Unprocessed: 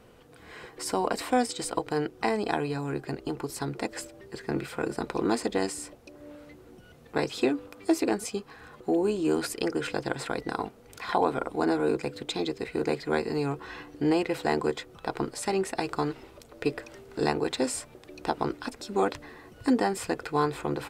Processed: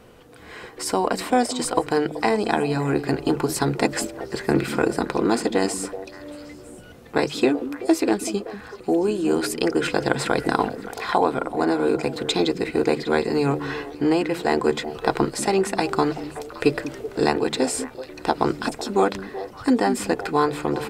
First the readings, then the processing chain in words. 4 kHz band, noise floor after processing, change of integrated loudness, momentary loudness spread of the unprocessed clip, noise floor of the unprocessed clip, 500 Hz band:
+7.5 dB, -43 dBFS, +6.5 dB, 14 LU, -53 dBFS, +7.0 dB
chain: notches 50/100/150 Hz; vocal rider within 4 dB 0.5 s; delay with a stepping band-pass 0.19 s, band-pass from 210 Hz, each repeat 1.4 oct, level -7 dB; gain +7 dB

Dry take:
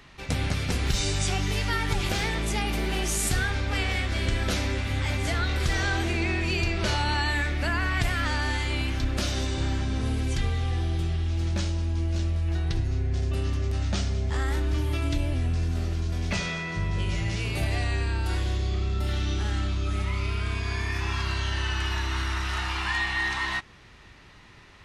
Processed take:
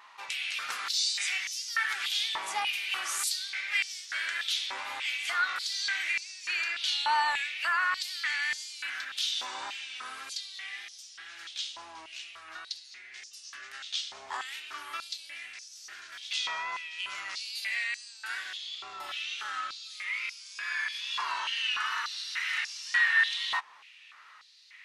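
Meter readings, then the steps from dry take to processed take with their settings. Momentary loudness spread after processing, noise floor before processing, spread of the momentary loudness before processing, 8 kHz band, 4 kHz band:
15 LU, -50 dBFS, 3 LU, -2.0 dB, +1.5 dB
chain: wow and flutter 48 cents; stepped high-pass 3.4 Hz 970–5600 Hz; gain -4.5 dB

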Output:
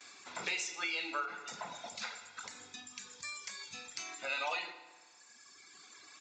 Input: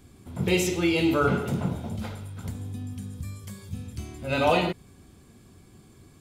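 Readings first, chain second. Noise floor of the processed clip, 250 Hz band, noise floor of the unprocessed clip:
-60 dBFS, -27.5 dB, -54 dBFS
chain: gate with hold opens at -49 dBFS; HPF 1400 Hz 12 dB/oct; notch 3100 Hz, Q 6; reverb removal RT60 1.5 s; compressor 4:1, threshold -51 dBFS, peak gain reduction 20 dB; FDN reverb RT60 1.4 s, low-frequency decay 1×, high-frequency decay 0.75×, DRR 8.5 dB; downsampling 16000 Hz; ending taper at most 110 dB/s; gain +13 dB

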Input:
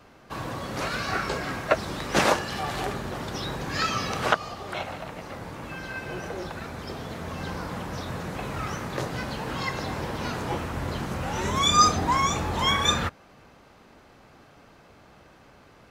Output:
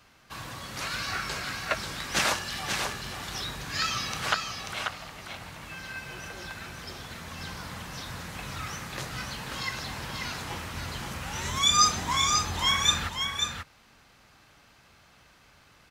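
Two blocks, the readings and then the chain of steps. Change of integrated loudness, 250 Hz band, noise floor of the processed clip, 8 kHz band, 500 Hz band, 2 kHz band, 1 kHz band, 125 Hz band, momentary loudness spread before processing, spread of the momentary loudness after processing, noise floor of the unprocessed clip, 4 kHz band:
-1.5 dB, -9.0 dB, -59 dBFS, +3.0 dB, -10.5 dB, -1.0 dB, -5.0 dB, -6.0 dB, 14 LU, 17 LU, -54 dBFS, +2.0 dB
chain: passive tone stack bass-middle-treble 5-5-5; on a send: echo 0.538 s -5.5 dB; on the sum: gain +8 dB

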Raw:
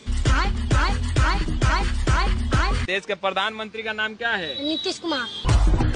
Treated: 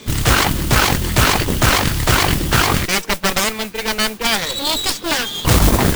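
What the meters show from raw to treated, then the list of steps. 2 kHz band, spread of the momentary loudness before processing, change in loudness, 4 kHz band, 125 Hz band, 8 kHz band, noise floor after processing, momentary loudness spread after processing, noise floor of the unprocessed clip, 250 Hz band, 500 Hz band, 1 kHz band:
+6.5 dB, 4 LU, +7.5 dB, +10.0 dB, +4.5 dB, +17.0 dB, -32 dBFS, 4 LU, -43 dBFS, +7.5 dB, +6.5 dB, +7.0 dB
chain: added harmonics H 6 -7 dB, 7 -7 dB, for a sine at -9 dBFS; modulation noise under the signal 10 dB; gain +1 dB

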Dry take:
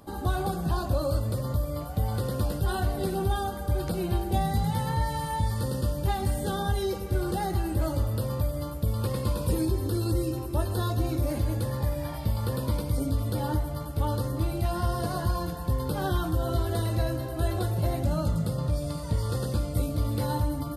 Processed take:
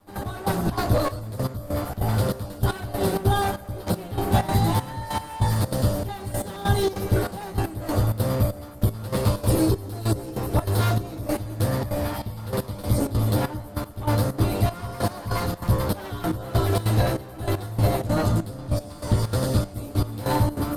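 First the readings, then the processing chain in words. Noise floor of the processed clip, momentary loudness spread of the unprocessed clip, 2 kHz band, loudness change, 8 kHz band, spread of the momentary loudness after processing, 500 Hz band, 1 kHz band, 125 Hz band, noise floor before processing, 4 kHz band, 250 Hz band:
-39 dBFS, 3 LU, +6.0 dB, +3.5 dB, +5.0 dB, 7 LU, +4.5 dB, +4.0 dB, +4.0 dB, -35 dBFS, +5.0 dB, +4.0 dB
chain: minimum comb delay 9.9 ms; step gate "..x...xxx.xxxx.." 194 bpm -12 dB; gain +8 dB

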